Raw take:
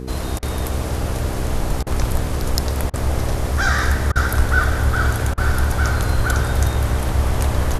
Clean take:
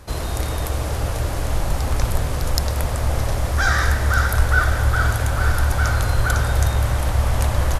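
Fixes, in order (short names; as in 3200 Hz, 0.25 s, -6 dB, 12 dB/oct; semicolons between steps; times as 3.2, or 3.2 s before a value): de-hum 64.2 Hz, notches 7; interpolate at 0.39/1.83/2.9/4.12/5.34, 35 ms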